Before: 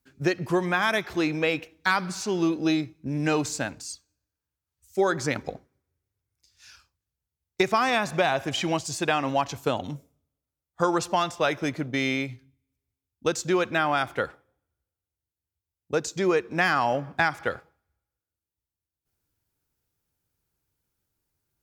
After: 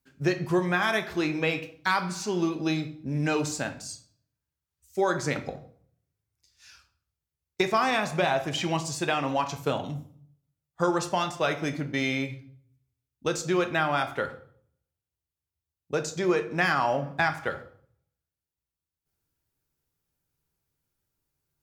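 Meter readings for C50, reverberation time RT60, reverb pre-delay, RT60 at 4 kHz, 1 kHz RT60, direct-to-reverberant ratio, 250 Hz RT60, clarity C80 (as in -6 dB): 13.0 dB, 0.55 s, 5 ms, 0.45 s, 0.50 s, 6.0 dB, 0.65 s, 17.0 dB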